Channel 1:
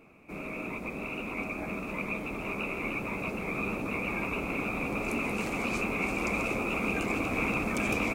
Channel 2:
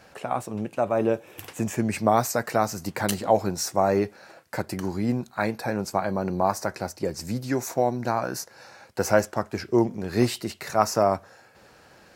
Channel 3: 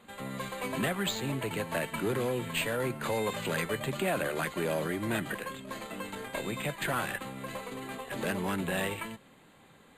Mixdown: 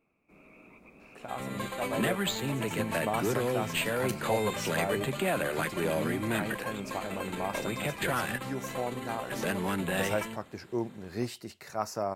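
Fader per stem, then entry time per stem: −18.0, −11.5, +1.0 decibels; 0.00, 1.00, 1.20 seconds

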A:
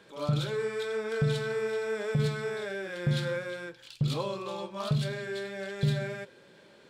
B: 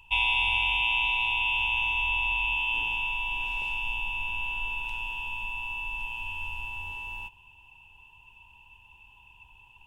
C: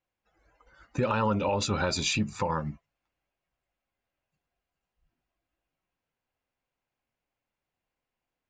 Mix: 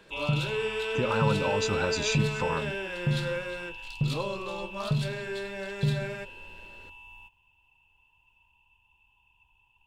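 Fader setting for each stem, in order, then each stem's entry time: +0.5, −11.5, −2.0 decibels; 0.00, 0.00, 0.00 seconds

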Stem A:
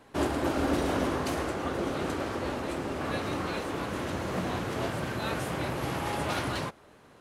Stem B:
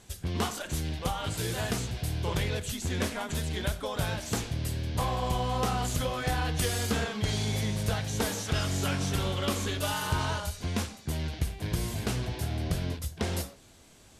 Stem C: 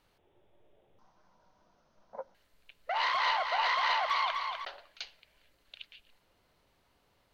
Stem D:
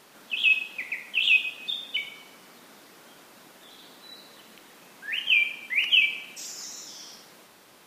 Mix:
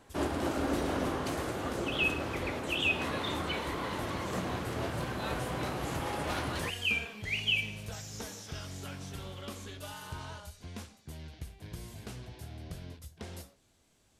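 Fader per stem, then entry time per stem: −4.0, −13.0, −14.0, −9.5 decibels; 0.00, 0.00, 0.00, 1.55 seconds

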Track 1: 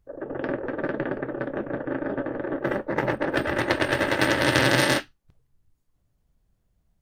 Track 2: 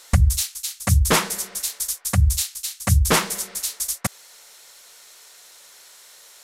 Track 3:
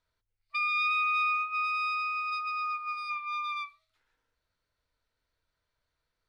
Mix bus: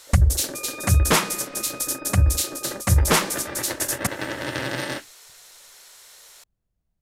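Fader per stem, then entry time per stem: −8.0, −0.5, −11.0 decibels; 0.00, 0.00, 0.00 seconds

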